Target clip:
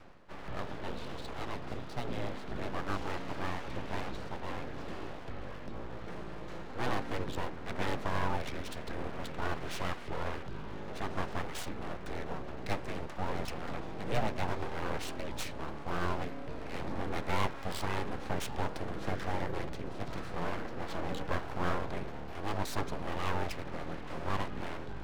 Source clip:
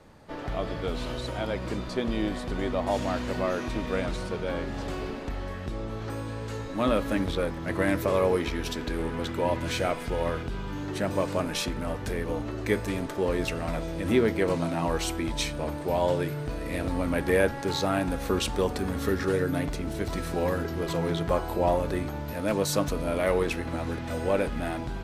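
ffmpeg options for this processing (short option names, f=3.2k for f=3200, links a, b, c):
-af "areverse,acompressor=mode=upward:threshold=-35dB:ratio=2.5,areverse,afreqshift=-17,adynamicsmooth=sensitivity=4.5:basefreq=3.7k,aeval=exprs='abs(val(0))':c=same,volume=-5.5dB"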